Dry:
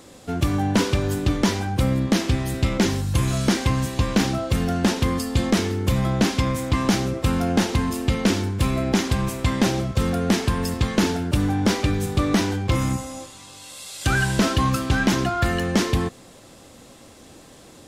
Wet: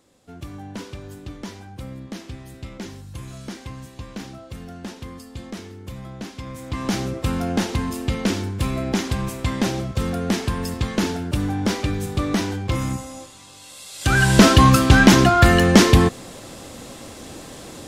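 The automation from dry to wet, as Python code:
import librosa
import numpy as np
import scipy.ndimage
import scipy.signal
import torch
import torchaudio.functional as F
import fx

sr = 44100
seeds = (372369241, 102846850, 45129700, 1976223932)

y = fx.gain(x, sr, db=fx.line((6.34, -14.5), (6.99, -2.0), (13.9, -2.0), (14.4, 8.5)))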